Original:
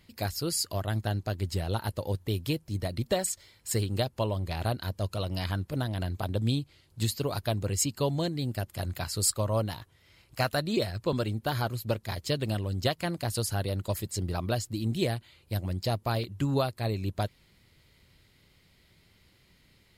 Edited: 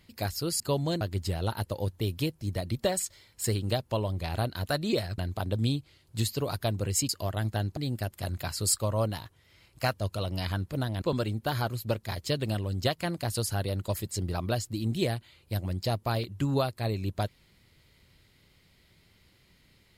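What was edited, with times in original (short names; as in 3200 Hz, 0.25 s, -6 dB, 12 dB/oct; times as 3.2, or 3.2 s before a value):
0.6–1.28 swap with 7.92–8.33
4.93–6.01 swap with 10.5–11.02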